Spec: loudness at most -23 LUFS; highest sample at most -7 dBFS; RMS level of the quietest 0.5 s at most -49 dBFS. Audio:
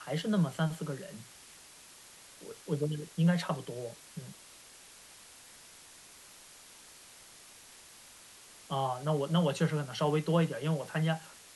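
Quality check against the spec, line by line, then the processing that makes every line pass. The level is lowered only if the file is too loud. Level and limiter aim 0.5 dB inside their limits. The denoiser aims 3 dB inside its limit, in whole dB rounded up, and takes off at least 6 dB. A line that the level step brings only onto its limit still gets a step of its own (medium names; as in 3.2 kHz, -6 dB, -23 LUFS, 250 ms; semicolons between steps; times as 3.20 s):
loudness -32.5 LUFS: pass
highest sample -16.5 dBFS: pass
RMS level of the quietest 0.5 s -55 dBFS: pass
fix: none needed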